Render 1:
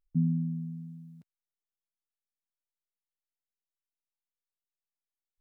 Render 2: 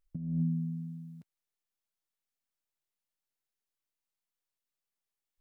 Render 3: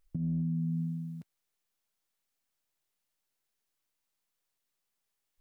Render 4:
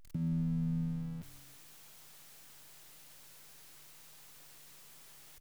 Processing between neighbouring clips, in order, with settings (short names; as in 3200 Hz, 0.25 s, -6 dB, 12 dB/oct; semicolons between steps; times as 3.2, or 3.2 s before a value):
negative-ratio compressor -30 dBFS, ratio -0.5
limiter -33 dBFS, peak gain reduction 10 dB; gain +6.5 dB
zero-crossing step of -46 dBFS; frequency-shifting echo 0.171 s, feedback 31%, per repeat -150 Hz, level -14 dB; gain -2.5 dB